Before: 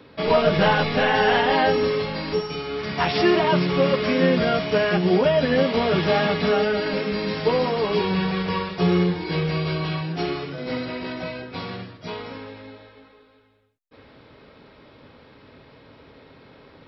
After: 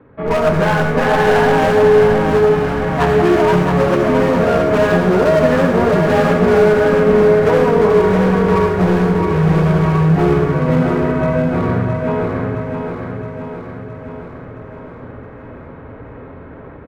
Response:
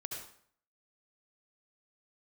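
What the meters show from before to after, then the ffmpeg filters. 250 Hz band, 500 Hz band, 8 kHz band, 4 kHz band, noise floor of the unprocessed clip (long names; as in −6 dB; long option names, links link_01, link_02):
+8.5 dB, +9.5 dB, can't be measured, −3.0 dB, −51 dBFS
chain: -filter_complex "[0:a]lowpass=frequency=1700:width=0.5412,lowpass=frequency=1700:width=1.3066,lowshelf=frequency=130:gain=9.5,bandreject=frequency=50:width_type=h:width=6,bandreject=frequency=100:width_type=h:width=6,bandreject=frequency=150:width_type=h:width=6,bandreject=frequency=200:width_type=h:width=6,dynaudnorm=framelen=180:gausssize=3:maxgain=10.5dB,asoftclip=type=hard:threshold=-12dB,aecho=1:1:667|1334|2001|2668|3335|4002|4669|5336:0.501|0.301|0.18|0.108|0.065|0.039|0.0234|0.014,asplit=2[link_01][link_02];[1:a]atrim=start_sample=2205,highshelf=frequency=3300:gain=10[link_03];[link_02][link_03]afir=irnorm=-1:irlink=0,volume=2.5dB[link_04];[link_01][link_04]amix=inputs=2:normalize=0,volume=-5.5dB"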